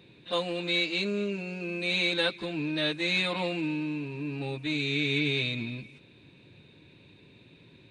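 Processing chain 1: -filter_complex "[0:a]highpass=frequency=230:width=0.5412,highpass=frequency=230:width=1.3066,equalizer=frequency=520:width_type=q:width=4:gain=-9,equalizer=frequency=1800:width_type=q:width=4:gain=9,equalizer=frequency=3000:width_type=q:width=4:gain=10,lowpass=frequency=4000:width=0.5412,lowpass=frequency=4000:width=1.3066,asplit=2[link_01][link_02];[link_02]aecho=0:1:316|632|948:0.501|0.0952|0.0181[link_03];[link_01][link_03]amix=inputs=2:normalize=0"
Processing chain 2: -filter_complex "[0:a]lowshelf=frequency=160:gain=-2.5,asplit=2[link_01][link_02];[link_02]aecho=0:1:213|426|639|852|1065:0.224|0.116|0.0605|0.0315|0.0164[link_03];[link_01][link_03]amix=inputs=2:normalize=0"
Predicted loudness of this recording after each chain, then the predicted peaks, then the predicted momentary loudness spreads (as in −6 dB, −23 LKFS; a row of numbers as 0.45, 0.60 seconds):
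−26.0, −29.0 LKFS; −11.5, −15.0 dBFS; 10, 9 LU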